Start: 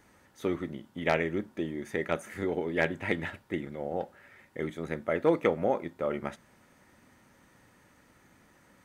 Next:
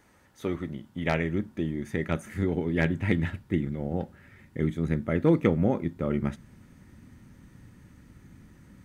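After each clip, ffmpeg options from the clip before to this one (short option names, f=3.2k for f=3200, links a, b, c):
-af "asubboost=boost=7.5:cutoff=230"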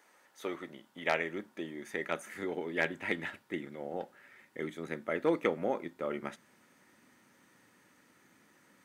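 -af "highpass=490,volume=-1dB"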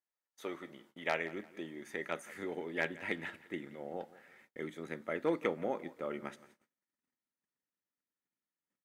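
-af "aecho=1:1:172|344|516:0.112|0.0404|0.0145,agate=range=-33dB:threshold=-59dB:ratio=16:detection=peak,volume=-3.5dB"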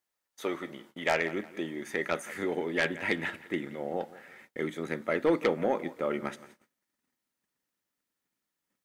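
-af "aeval=exprs='0.133*sin(PI/2*1.78*val(0)/0.133)':c=same"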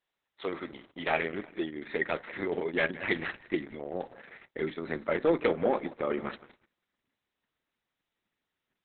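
-af "volume=1dB" -ar 48000 -c:a libopus -b:a 6k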